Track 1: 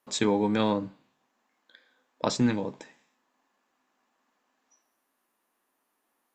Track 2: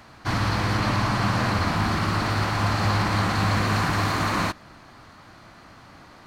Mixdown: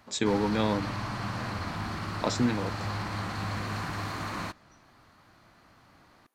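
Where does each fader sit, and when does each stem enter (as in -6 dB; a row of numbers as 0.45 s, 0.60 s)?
-2.0 dB, -11.0 dB; 0.00 s, 0.00 s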